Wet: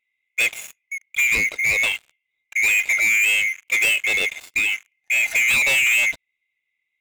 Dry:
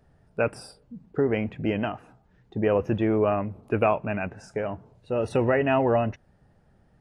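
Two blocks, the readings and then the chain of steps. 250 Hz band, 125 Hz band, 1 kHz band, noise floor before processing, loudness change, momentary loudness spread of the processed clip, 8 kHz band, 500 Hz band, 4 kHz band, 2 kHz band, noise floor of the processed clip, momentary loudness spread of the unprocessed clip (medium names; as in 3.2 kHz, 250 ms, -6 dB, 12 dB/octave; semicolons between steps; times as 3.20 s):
under -15 dB, under -15 dB, -10.0 dB, -62 dBFS, +8.0 dB, 14 LU, no reading, -15.0 dB, +20.0 dB, +19.0 dB, -78 dBFS, 14 LU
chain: split-band scrambler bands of 2 kHz; waveshaping leveller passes 5; trim -7 dB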